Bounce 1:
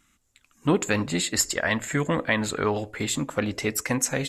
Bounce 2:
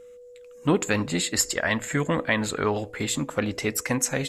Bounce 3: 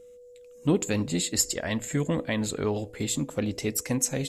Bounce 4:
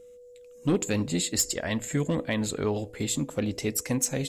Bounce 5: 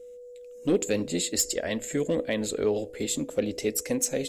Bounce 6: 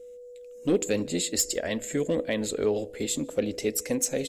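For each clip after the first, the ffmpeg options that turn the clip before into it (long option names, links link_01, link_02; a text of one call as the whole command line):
ffmpeg -i in.wav -af "aeval=exprs='val(0)+0.00631*sin(2*PI*490*n/s)':channel_layout=same" out.wav
ffmpeg -i in.wav -af "equalizer=frequency=1400:width=0.73:gain=-12" out.wav
ffmpeg -i in.wav -af "asoftclip=type=hard:threshold=-17dB" out.wav
ffmpeg -i in.wav -af "equalizer=frequency=125:width_type=o:width=1:gain=-11,equalizer=frequency=500:width_type=o:width=1:gain=7,equalizer=frequency=1000:width_type=o:width=1:gain=-8" out.wav
ffmpeg -i in.wav -filter_complex "[0:a]asplit=2[link_01][link_02];[link_02]adelay=151.6,volume=-29dB,highshelf=frequency=4000:gain=-3.41[link_03];[link_01][link_03]amix=inputs=2:normalize=0" out.wav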